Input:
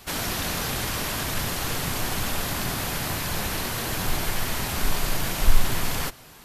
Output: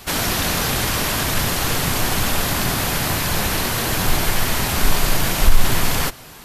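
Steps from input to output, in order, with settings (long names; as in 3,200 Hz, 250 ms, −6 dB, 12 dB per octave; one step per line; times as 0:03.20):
boost into a limiter +8.5 dB
level −1 dB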